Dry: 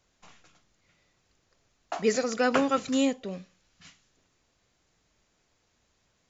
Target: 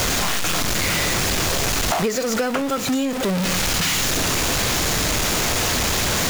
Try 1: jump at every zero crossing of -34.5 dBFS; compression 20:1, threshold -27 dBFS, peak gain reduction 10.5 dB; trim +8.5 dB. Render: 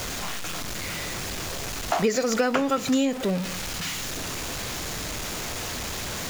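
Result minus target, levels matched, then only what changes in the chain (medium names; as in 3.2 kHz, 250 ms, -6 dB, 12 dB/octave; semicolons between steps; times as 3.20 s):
jump at every zero crossing: distortion -9 dB
change: jump at every zero crossing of -22.5 dBFS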